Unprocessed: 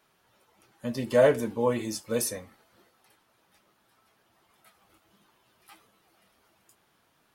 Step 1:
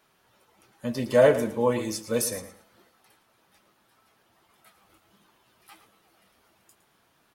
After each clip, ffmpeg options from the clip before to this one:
ffmpeg -i in.wav -af "aecho=1:1:112|224|336:0.224|0.0537|0.0129,volume=2dB" out.wav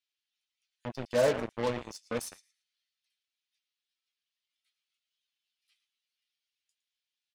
ffmpeg -i in.wav -filter_complex "[0:a]acrossover=split=3000[link_01][link_02];[link_01]acrusher=bits=3:mix=0:aa=0.5[link_03];[link_02]adynamicsmooth=sensitivity=6:basefreq=4000[link_04];[link_03][link_04]amix=inputs=2:normalize=0,volume=-8dB" out.wav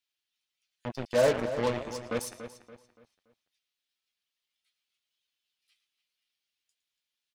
ffmpeg -i in.wav -filter_complex "[0:a]asplit=2[link_01][link_02];[link_02]adelay=286,lowpass=frequency=4400:poles=1,volume=-11dB,asplit=2[link_03][link_04];[link_04]adelay=286,lowpass=frequency=4400:poles=1,volume=0.37,asplit=2[link_05][link_06];[link_06]adelay=286,lowpass=frequency=4400:poles=1,volume=0.37,asplit=2[link_07][link_08];[link_08]adelay=286,lowpass=frequency=4400:poles=1,volume=0.37[link_09];[link_01][link_03][link_05][link_07][link_09]amix=inputs=5:normalize=0,volume=2dB" out.wav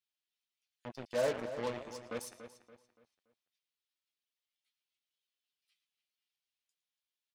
ffmpeg -i in.wav -af "lowshelf=frequency=130:gain=-7,volume=-8dB" out.wav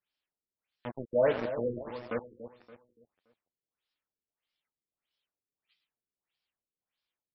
ffmpeg -i in.wav -af "afftfilt=real='re*lt(b*sr/1024,480*pow(5800/480,0.5+0.5*sin(2*PI*1.6*pts/sr)))':imag='im*lt(b*sr/1024,480*pow(5800/480,0.5+0.5*sin(2*PI*1.6*pts/sr)))':win_size=1024:overlap=0.75,volume=6.5dB" out.wav

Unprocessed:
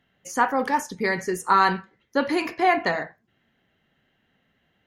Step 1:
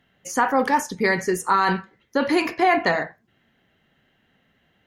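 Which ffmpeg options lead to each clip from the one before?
ffmpeg -i in.wav -af "alimiter=limit=-13dB:level=0:latency=1:release=24,volume=4dB" out.wav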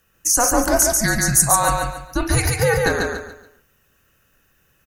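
ffmpeg -i in.wav -af "aexciter=amount=9.6:drive=3.5:freq=5500,aecho=1:1:142|284|426|568:0.708|0.227|0.0725|0.0232,afreqshift=-230" out.wav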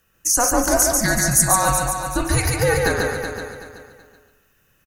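ffmpeg -i in.wav -af "aecho=1:1:377|754|1131:0.376|0.109|0.0316,volume=-1dB" out.wav

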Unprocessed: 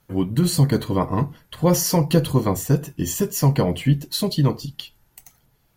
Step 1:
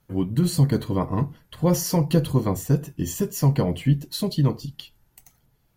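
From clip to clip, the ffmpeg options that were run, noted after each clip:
ffmpeg -i in.wav -af "lowshelf=frequency=390:gain=4.5,volume=-5.5dB" out.wav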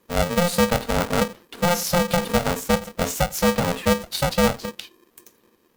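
ffmpeg -i in.wav -af "alimiter=limit=-13dB:level=0:latency=1:release=232,aeval=exprs='val(0)*sgn(sin(2*PI*350*n/s))':channel_layout=same,volume=3dB" out.wav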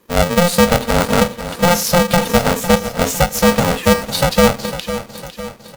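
ffmpeg -i in.wav -af "aecho=1:1:504|1008|1512|2016|2520:0.251|0.131|0.0679|0.0353|0.0184,volume=7dB" out.wav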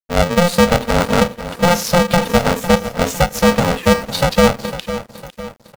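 ffmpeg -i in.wav -filter_complex "[0:a]asplit=2[link_01][link_02];[link_02]adynamicsmooth=sensitivity=4:basefreq=1800,volume=-3dB[link_03];[link_01][link_03]amix=inputs=2:normalize=0,aeval=exprs='sgn(val(0))*max(abs(val(0))-0.015,0)':channel_layout=same,volume=-4.5dB" out.wav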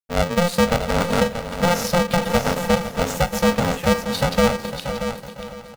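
ffmpeg -i in.wav -af "aecho=1:1:632|1264:0.355|0.0532,volume=-5.5dB" out.wav

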